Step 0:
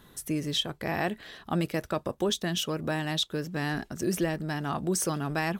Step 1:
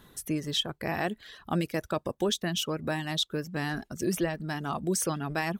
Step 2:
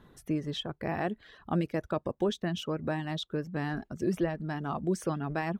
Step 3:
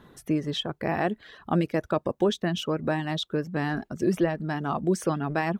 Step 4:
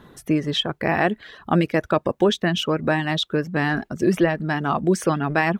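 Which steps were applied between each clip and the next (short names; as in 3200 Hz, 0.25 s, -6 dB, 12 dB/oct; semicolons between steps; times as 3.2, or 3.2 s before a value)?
reverb removal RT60 0.64 s
LPF 1300 Hz 6 dB/oct
low shelf 83 Hz -9 dB; gain +6 dB
dynamic EQ 2100 Hz, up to +5 dB, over -44 dBFS, Q 0.89; gain +5 dB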